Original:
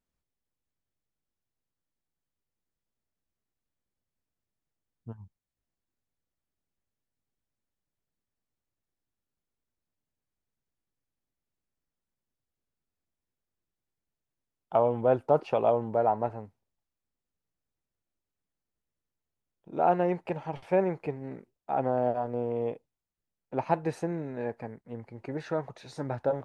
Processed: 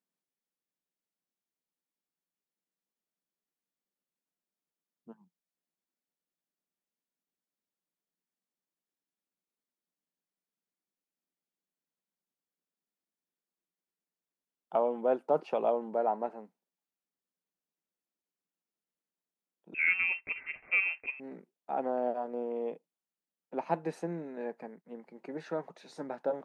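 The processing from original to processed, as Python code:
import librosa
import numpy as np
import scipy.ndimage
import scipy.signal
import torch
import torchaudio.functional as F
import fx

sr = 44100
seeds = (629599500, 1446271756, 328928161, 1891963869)

y = scipy.signal.sosfilt(scipy.signal.ellip(4, 1.0, 40, 170.0, 'highpass', fs=sr, output='sos'), x)
y = fx.freq_invert(y, sr, carrier_hz=2900, at=(19.74, 21.2))
y = y * 10.0 ** (-4.0 / 20.0)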